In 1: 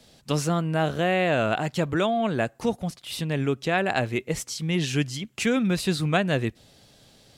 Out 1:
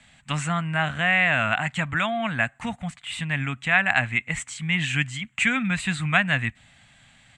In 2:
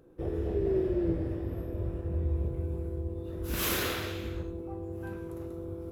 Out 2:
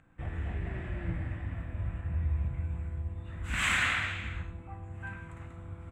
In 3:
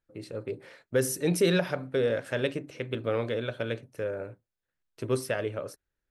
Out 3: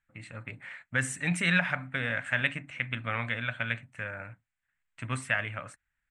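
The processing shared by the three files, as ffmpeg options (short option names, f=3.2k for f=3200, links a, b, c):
-af "firequalizer=gain_entry='entry(130,0);entry(260,-4);entry(380,-23);entry(710,-1);entry(2000,12);entry(5200,-14);entry(7800,5);entry(12000,-25)':delay=0.05:min_phase=1"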